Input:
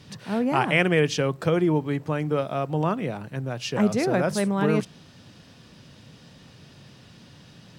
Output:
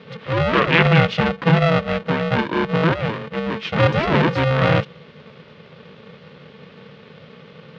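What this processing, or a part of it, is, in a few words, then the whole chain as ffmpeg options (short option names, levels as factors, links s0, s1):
ring modulator pedal into a guitar cabinet: -af "aeval=exprs='val(0)*sgn(sin(2*PI*330*n/s))':c=same,highpass=110,equalizer=f=150:t=q:w=4:g=8,equalizer=f=360:t=q:w=4:g=5,equalizer=f=780:t=q:w=4:g=-8,lowpass=f=3500:w=0.5412,lowpass=f=3500:w=1.3066,volume=2"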